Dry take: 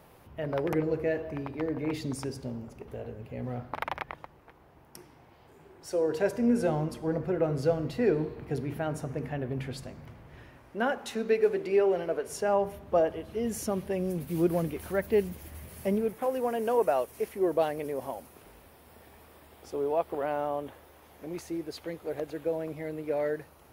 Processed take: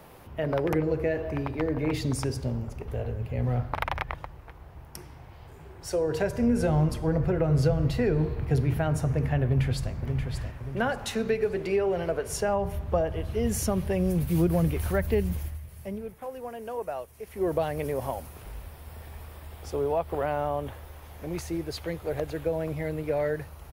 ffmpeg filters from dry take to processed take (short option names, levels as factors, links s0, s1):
-filter_complex "[0:a]asplit=2[s0][s1];[s1]afade=t=in:st=9.44:d=0.01,afade=t=out:st=9.93:d=0.01,aecho=0:1:580|1160|1740|2320|2900:0.501187|0.225534|0.10149|0.0456707|0.0205518[s2];[s0][s2]amix=inputs=2:normalize=0,asplit=3[s3][s4][s5];[s3]atrim=end=15.58,asetpts=PTS-STARTPTS,afade=t=out:st=15.35:d=0.23:silence=0.237137[s6];[s4]atrim=start=15.58:end=17.26,asetpts=PTS-STARTPTS,volume=0.237[s7];[s5]atrim=start=17.26,asetpts=PTS-STARTPTS,afade=t=in:d=0.23:silence=0.237137[s8];[s6][s7][s8]concat=n=3:v=0:a=1,asubboost=boost=6.5:cutoff=99,acrossover=split=200[s9][s10];[s10]acompressor=threshold=0.0316:ratio=4[s11];[s9][s11]amix=inputs=2:normalize=0,volume=2"